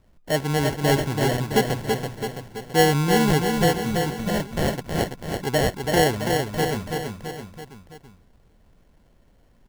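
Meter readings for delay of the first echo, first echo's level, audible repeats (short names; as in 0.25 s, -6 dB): 0.332 s, -4.5 dB, 4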